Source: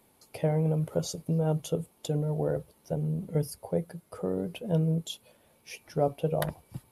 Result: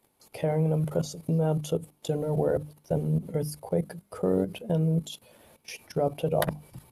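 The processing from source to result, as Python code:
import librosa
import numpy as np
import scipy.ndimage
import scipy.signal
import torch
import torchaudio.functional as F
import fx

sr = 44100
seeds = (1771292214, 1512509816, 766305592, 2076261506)

y = fx.level_steps(x, sr, step_db=16)
y = fx.hum_notches(y, sr, base_hz=50, count=6)
y = y * librosa.db_to_amplitude(8.5)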